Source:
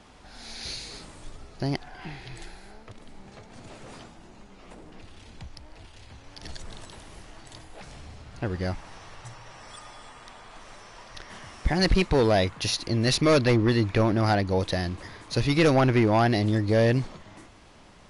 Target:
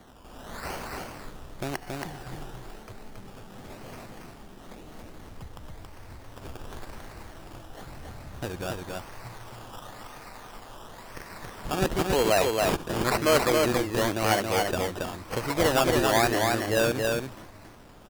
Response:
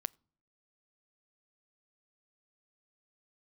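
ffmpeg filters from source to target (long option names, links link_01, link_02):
-filter_complex "[0:a]acrossover=split=370[link_01][link_02];[link_01]acompressor=threshold=-37dB:ratio=6[link_03];[link_03][link_02]amix=inputs=2:normalize=0,acrusher=samples=17:mix=1:aa=0.000001:lfo=1:lforange=10.2:lforate=0.96,aecho=1:1:276:0.708[link_04];[1:a]atrim=start_sample=2205,asetrate=41454,aresample=44100[link_05];[link_04][link_05]afir=irnorm=-1:irlink=0,volume=1.5dB"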